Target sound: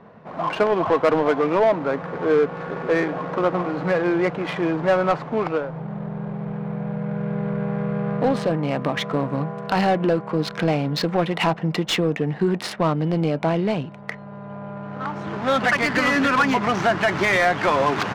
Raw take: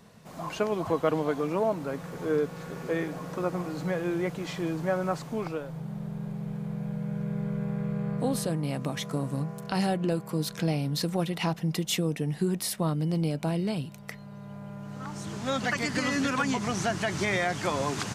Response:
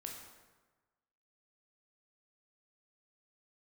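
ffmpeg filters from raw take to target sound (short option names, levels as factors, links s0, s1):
-filter_complex "[0:a]adynamicsmooth=sensitivity=7:basefreq=1300,asplit=2[s0][s1];[s1]highpass=f=720:p=1,volume=6.31,asoftclip=type=tanh:threshold=0.224[s2];[s0][s2]amix=inputs=2:normalize=0,lowpass=f=2200:p=1,volume=0.501,volume=1.88"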